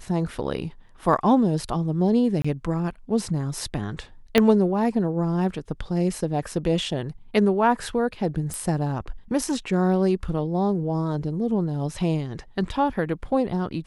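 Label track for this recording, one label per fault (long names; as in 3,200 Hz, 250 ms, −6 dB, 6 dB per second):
2.420000	2.440000	drop-out 25 ms
4.380000	4.380000	click −5 dBFS
8.540000	8.540000	click −17 dBFS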